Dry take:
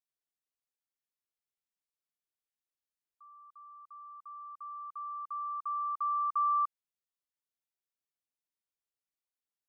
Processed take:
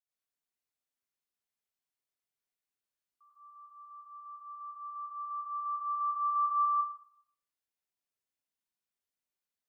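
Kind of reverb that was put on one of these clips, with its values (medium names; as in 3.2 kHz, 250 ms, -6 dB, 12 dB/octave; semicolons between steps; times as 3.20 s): plate-style reverb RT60 0.66 s, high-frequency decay 0.85×, pre-delay 80 ms, DRR -8.5 dB; trim -8 dB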